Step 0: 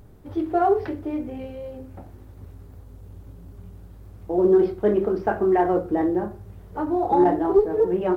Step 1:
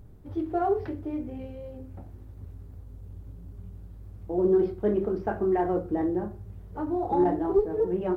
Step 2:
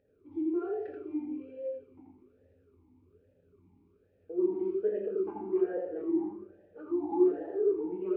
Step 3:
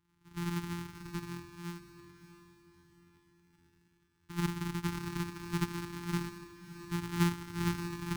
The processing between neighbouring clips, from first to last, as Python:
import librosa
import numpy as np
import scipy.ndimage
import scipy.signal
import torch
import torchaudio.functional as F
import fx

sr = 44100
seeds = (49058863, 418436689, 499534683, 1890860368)

y1 = fx.low_shelf(x, sr, hz=260.0, db=8.5)
y1 = F.gain(torch.from_numpy(y1), -8.0).numpy()
y2 = y1 + 10.0 ** (-3.5 / 20.0) * np.pad(y1, (int(83 * sr / 1000.0), 0))[:len(y1)]
y2 = fx.rev_fdn(y2, sr, rt60_s=1.4, lf_ratio=1.1, hf_ratio=0.9, size_ms=68.0, drr_db=4.0)
y2 = fx.vowel_sweep(y2, sr, vowels='e-u', hz=1.2)
y3 = np.r_[np.sort(y2[:len(y2) // 256 * 256].reshape(-1, 256), axis=1).ravel(), y2[len(y2) // 256 * 256:]]
y3 = scipy.signal.sosfilt(scipy.signal.cheby1(4, 1.0, [420.0, 860.0], 'bandstop', fs=sr, output='sos'), y3)
y3 = fx.echo_diffused(y3, sr, ms=642, feedback_pct=40, wet_db=-13)
y3 = F.gain(torch.from_numpy(y3), -4.0).numpy()